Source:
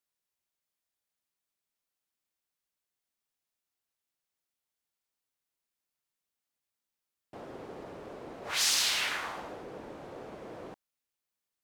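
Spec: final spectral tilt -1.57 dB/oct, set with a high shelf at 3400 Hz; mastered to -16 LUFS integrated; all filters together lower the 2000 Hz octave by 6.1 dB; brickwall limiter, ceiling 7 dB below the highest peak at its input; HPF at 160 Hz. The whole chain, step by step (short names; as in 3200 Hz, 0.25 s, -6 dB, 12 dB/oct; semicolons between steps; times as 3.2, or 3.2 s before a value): HPF 160 Hz; bell 2000 Hz -5 dB; high shelf 3400 Hz -8.5 dB; gain +25.5 dB; limiter -3 dBFS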